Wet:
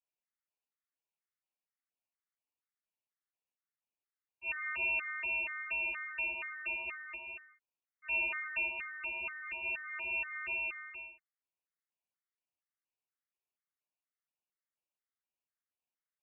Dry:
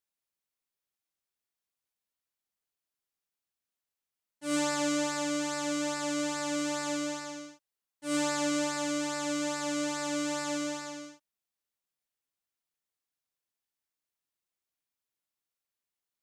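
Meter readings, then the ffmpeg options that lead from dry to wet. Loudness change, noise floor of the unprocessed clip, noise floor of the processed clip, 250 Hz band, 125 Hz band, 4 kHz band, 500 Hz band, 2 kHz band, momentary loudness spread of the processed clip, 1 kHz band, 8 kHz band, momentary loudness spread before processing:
-4.0 dB, under -85 dBFS, under -85 dBFS, -30.5 dB, under -15 dB, -13.5 dB, -19.5 dB, +3.5 dB, 12 LU, -11.5 dB, under -40 dB, 13 LU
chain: -af "lowpass=f=2600:t=q:w=0.5098,lowpass=f=2600:t=q:w=0.6013,lowpass=f=2600:t=q:w=0.9,lowpass=f=2600:t=q:w=2.563,afreqshift=-3000,afftfilt=real='re*gt(sin(2*PI*2.1*pts/sr)*(1-2*mod(floor(b*sr/1024/1100),2)),0)':imag='im*gt(sin(2*PI*2.1*pts/sr)*(1-2*mod(floor(b*sr/1024/1100),2)),0)':win_size=1024:overlap=0.75,volume=0.75"

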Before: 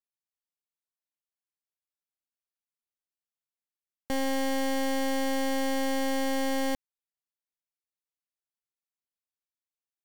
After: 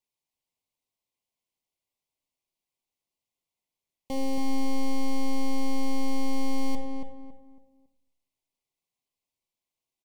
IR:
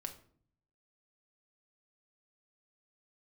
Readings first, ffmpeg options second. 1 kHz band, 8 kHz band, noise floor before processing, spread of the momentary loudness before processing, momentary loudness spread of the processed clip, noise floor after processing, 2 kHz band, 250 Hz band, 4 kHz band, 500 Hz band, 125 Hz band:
-4.0 dB, -6.0 dB, under -85 dBFS, 3 LU, 9 LU, under -85 dBFS, -9.5 dB, +0.5 dB, -5.5 dB, -6.5 dB, no reading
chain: -filter_complex "[0:a]equalizer=f=14000:t=o:w=1.7:g=-4,alimiter=level_in=4.73:limit=0.0631:level=0:latency=1,volume=0.211,asuperstop=centerf=1500:order=20:qfactor=1.9,asplit=2[s0][s1];[s1]adelay=277,lowpass=f=1600:p=1,volume=0.596,asplit=2[s2][s3];[s3]adelay=277,lowpass=f=1600:p=1,volume=0.33,asplit=2[s4][s5];[s5]adelay=277,lowpass=f=1600:p=1,volume=0.33,asplit=2[s6][s7];[s7]adelay=277,lowpass=f=1600:p=1,volume=0.33[s8];[s0][s2][s4][s6][s8]amix=inputs=5:normalize=0,asplit=2[s9][s10];[1:a]atrim=start_sample=2205,asetrate=28224,aresample=44100[s11];[s10][s11]afir=irnorm=-1:irlink=0,volume=1.5[s12];[s9][s12]amix=inputs=2:normalize=0"

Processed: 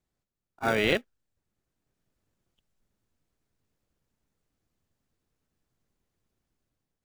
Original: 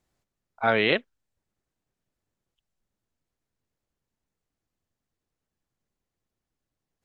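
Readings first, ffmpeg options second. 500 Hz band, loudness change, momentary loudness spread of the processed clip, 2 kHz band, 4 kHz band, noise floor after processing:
-2.5 dB, -3.0 dB, 6 LU, -3.5 dB, -3.0 dB, under -85 dBFS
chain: -filter_complex "[0:a]dynaudnorm=f=280:g=5:m=3.76,asplit=2[s0][s1];[s1]acrusher=samples=42:mix=1:aa=0.000001,volume=0.422[s2];[s0][s2]amix=inputs=2:normalize=0,volume=0.376"

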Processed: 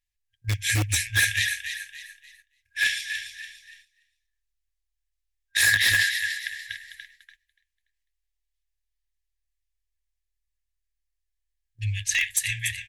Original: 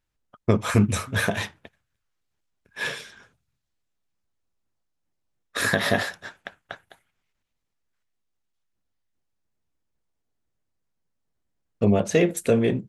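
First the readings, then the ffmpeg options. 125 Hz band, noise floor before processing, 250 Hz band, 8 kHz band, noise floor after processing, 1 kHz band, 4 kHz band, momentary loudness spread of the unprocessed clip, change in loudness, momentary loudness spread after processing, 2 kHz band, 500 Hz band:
-4.0 dB, -78 dBFS, under -20 dB, +8.5 dB, -81 dBFS, -14.5 dB, +7.5 dB, 20 LU, 0.0 dB, 19 LU, +6.0 dB, under -25 dB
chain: -filter_complex "[0:a]highshelf=f=6600:g=2.5,asplit=2[s0][s1];[s1]asplit=4[s2][s3][s4][s5];[s2]adelay=289,afreqshift=38,volume=0.376[s6];[s3]adelay=578,afreqshift=76,volume=0.132[s7];[s4]adelay=867,afreqshift=114,volume=0.0462[s8];[s5]adelay=1156,afreqshift=152,volume=0.016[s9];[s6][s7][s8][s9]amix=inputs=4:normalize=0[s10];[s0][s10]amix=inputs=2:normalize=0,afftfilt=real='re*(1-between(b*sr/4096,110,1600))':imag='im*(1-between(b*sr/4096,110,1600))':win_size=4096:overlap=0.75,asplit=2[s11][s12];[s12]aeval=exprs='(mod(8.41*val(0)+1,2)-1)/8.41':c=same,volume=0.316[s13];[s11][s13]amix=inputs=2:normalize=0,equalizer=f=94:t=o:w=0.77:g=-8,agate=range=0.316:threshold=0.00141:ratio=16:detection=peak,volume=1.68" -ar 48000 -c:a libmp3lame -b:a 128k

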